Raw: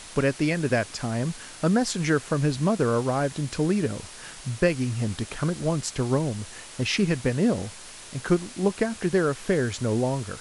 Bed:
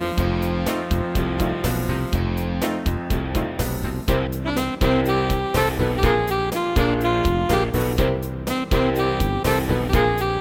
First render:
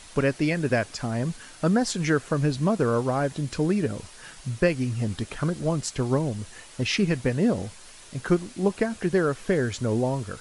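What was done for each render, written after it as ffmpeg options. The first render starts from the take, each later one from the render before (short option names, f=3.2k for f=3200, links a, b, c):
-af "afftdn=nr=6:nf=-43"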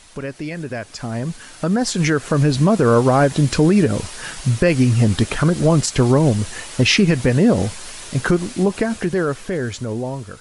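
-af "alimiter=limit=-18.5dB:level=0:latency=1:release=100,dynaudnorm=f=420:g=9:m=13.5dB"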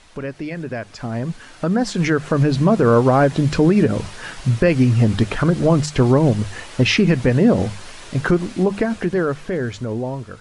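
-af "aemphasis=mode=reproduction:type=50fm,bandreject=f=50:t=h:w=6,bandreject=f=100:t=h:w=6,bandreject=f=150:t=h:w=6,bandreject=f=200:t=h:w=6"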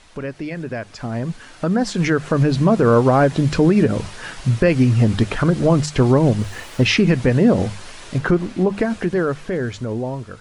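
-filter_complex "[0:a]asplit=3[a][b][c];[a]afade=t=out:st=6.39:d=0.02[d];[b]aeval=exprs='val(0)*gte(abs(val(0)),0.00944)':c=same,afade=t=in:st=6.39:d=0.02,afade=t=out:st=6.86:d=0.02[e];[c]afade=t=in:st=6.86:d=0.02[f];[d][e][f]amix=inputs=3:normalize=0,asettb=1/sr,asplit=3[g][h][i];[g]atrim=end=8.184[j];[h]atrim=start=8.18:end=8.78,asetpts=PTS-STARTPTS,afade=t=in:d=0.004:c=qsin,afade=t=out:st=0.596:d=0.004:c=qsin,highshelf=f=4.1k:g=-7.5[k];[i]atrim=start=8.776[l];[j][k]acrossfade=d=0.004:c1=hsin:c2=qsin[m];[m][l]acrossfade=d=0.004:c1=qsin:c2=hsin"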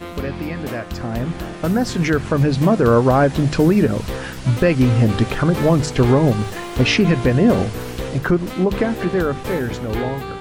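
-filter_complex "[1:a]volume=-7.5dB[a];[0:a][a]amix=inputs=2:normalize=0"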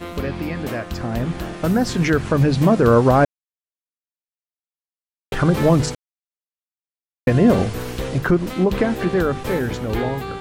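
-filter_complex "[0:a]asplit=5[a][b][c][d][e];[a]atrim=end=3.25,asetpts=PTS-STARTPTS,afade=t=out:st=3.246:d=0.004:c=hsin[f];[b]atrim=start=3.25:end=5.32,asetpts=PTS-STARTPTS,volume=0[g];[c]atrim=start=5.32:end=5.95,asetpts=PTS-STARTPTS,afade=t=in:d=0.004:c=hsin,afade=t=out:st=0.626:d=0.004:c=hsin[h];[d]atrim=start=5.95:end=7.27,asetpts=PTS-STARTPTS,volume=0[i];[e]atrim=start=7.27,asetpts=PTS-STARTPTS,afade=t=in:d=0.004:c=hsin[j];[f][g][h][i][j]concat=n=5:v=0:a=1"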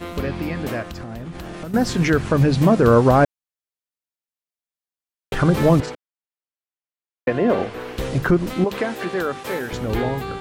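-filter_complex "[0:a]asettb=1/sr,asplit=3[a][b][c];[a]atrim=end=0.824[d];[b]atrim=start=0.82:end=1.74,asetpts=PTS-STARTPTS,afade=t=in:d=0.004:c=qsin,afade=t=out:st=0.916:d=0.004:c=qsin,acompressor=threshold=-28dB:ratio=12:attack=3.2:release=140:knee=1:detection=peak[e];[c]atrim=start=1.736[f];[d][e]acrossfade=d=0.004:c1=hsin:c2=qsin[g];[g][f]acrossfade=d=0.004:c1=qsin:c2=hsin,asettb=1/sr,asplit=3[h][i][j];[h]atrim=end=5.804[k];[i]atrim=start=5.8:end=7.98,asetpts=PTS-STARTPTS,afade=t=in:d=0.004:c=qsin,afade=t=out:st=2.176:d=0.004:c=qsin,acrossover=split=280 3500:gain=0.178 1 0.178[l][m][n];[l][m][n]amix=inputs=3:normalize=0[o];[j]atrim=start=7.976[p];[k][o]acrossfade=d=0.004:c1=hsin:c2=qsin[q];[q][p]acrossfade=d=0.004:c1=qsin:c2=hsin,asettb=1/sr,asplit=3[r][s][t];[r]atrim=end=8.644[u];[s]atrim=start=8.64:end=9.73,asetpts=PTS-STARTPTS,afade=t=in:d=0.004:c=qsin,afade=t=out:st=1.086:d=0.004:c=qsin,highpass=f=560:p=1[v];[t]atrim=start=9.726[w];[u][v]acrossfade=d=0.004:c1=hsin:c2=qsin[x];[x][w]acrossfade=d=0.004:c1=qsin:c2=hsin"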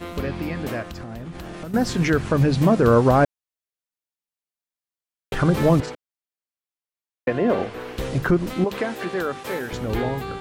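-af "volume=-2dB"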